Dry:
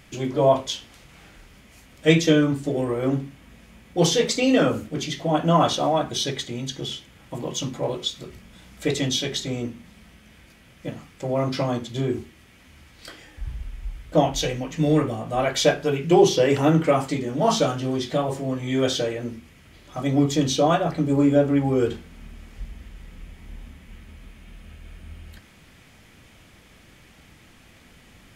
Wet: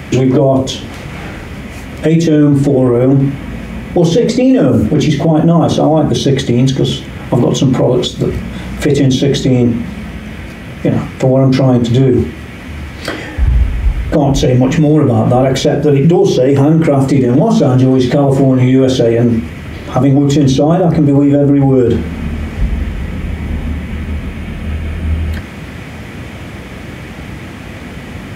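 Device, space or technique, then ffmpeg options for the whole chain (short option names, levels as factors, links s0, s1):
mastering chain: -filter_complex "[0:a]highpass=f=55:w=0.5412,highpass=f=55:w=1.3066,equalizer=f=2100:t=o:w=0.86:g=4,acrossover=split=550|5900[s0][s1][s2];[s0]acompressor=threshold=0.0794:ratio=4[s3];[s1]acompressor=threshold=0.0158:ratio=4[s4];[s2]acompressor=threshold=0.00794:ratio=4[s5];[s3][s4][s5]amix=inputs=3:normalize=0,acompressor=threshold=0.0282:ratio=1.5,tiltshelf=f=1400:g=6.5,alimiter=level_in=12.6:limit=0.891:release=50:level=0:latency=1,volume=0.891"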